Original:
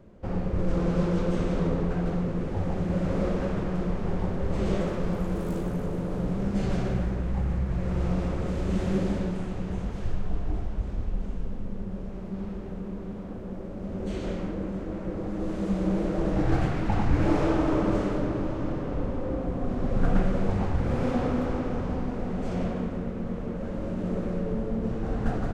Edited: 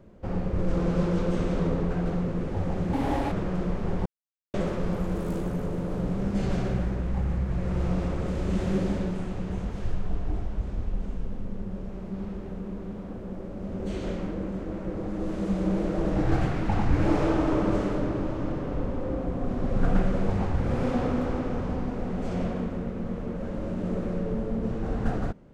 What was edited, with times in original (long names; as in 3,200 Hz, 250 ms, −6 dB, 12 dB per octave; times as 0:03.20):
0:02.93–0:03.52: play speed 152%
0:04.26–0:04.74: silence